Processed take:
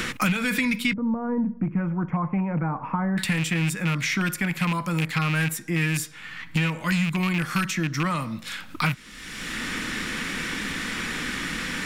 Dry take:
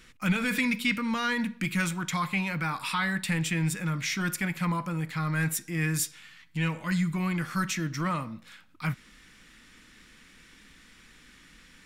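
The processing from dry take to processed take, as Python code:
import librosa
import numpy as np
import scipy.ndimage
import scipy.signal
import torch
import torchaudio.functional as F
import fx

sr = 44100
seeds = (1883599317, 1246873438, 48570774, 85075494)

y = fx.rattle_buzz(x, sr, strikes_db=-28.0, level_db=-23.0)
y = fx.cheby2_lowpass(y, sr, hz=3600.0, order=4, stop_db=70, at=(0.93, 3.18))
y = fx.band_squash(y, sr, depth_pct=100)
y = F.gain(torch.from_numpy(y), 4.0).numpy()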